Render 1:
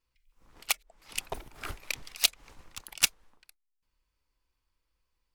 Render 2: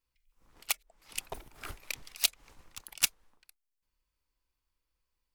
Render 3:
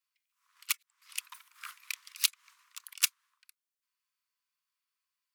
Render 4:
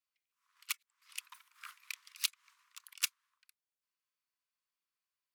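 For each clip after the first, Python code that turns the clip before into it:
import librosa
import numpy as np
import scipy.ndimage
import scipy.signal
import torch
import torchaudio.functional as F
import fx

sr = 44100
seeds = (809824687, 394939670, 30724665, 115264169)

y1 = fx.high_shelf(x, sr, hz=9000.0, db=5.5)
y1 = y1 * 10.0 ** (-4.5 / 20.0)
y2 = scipy.signal.sosfilt(scipy.signal.butter(16, 1000.0, 'highpass', fs=sr, output='sos'), y1)
y3 = fx.high_shelf(y2, sr, hz=6100.0, db=-4.0)
y3 = y3 * 10.0 ** (-4.5 / 20.0)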